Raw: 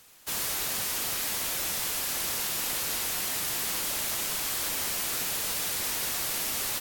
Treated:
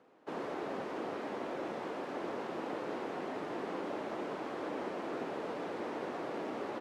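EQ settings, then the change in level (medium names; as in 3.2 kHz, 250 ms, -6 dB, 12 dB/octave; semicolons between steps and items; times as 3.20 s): ladder band-pass 410 Hz, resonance 25%; +17.0 dB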